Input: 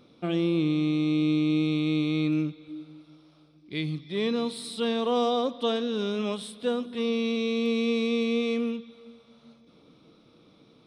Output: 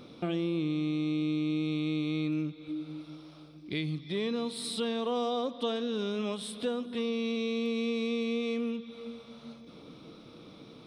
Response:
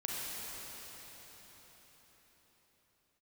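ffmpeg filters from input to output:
-af "acompressor=threshold=-42dB:ratio=2.5,volume=7dB"

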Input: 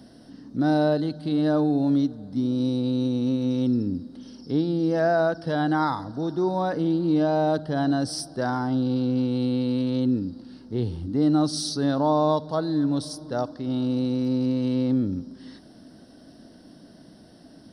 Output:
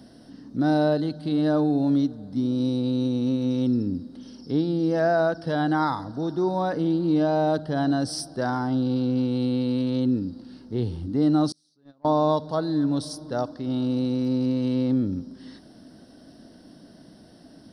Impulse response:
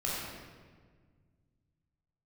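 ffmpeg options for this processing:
-filter_complex "[0:a]asettb=1/sr,asplit=3[a][b][c];[a]atrim=end=11.524[d];[b]atrim=start=11.52:end=12.05,asetpts=PTS-STARTPTS,afade=t=in:d=0.004:c=qsin,afade=t=out:st=0.526:d=0.004:c=qsin,agate=range=-38dB:threshold=-17dB:ratio=16:detection=peak[e];[c]atrim=start=12.046[f];[d][e]acrossfade=d=0.004:c1=hsin:c2=qsin[g];[g][f]acrossfade=d=0.004:c1=qsin:c2=hsin"

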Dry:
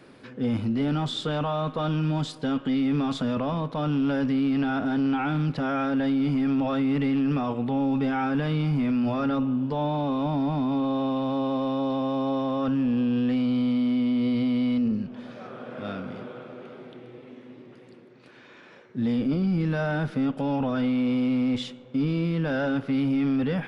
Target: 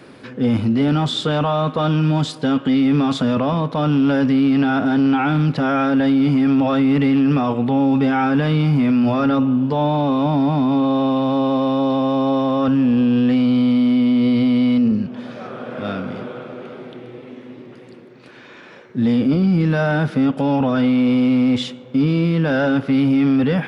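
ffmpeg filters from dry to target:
-af "highpass=42,volume=8.5dB"

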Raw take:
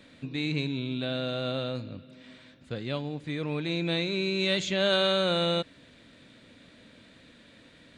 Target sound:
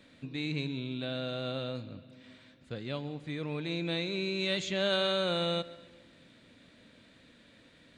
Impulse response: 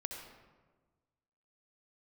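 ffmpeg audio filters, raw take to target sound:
-filter_complex "[0:a]asplit=2[a][b];[1:a]atrim=start_sample=2205,adelay=139[c];[b][c]afir=irnorm=-1:irlink=0,volume=-17dB[d];[a][d]amix=inputs=2:normalize=0,volume=-4.5dB"

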